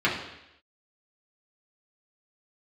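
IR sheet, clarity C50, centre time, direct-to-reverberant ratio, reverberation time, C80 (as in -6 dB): 5.5 dB, 36 ms, -6.5 dB, 0.85 s, 8.5 dB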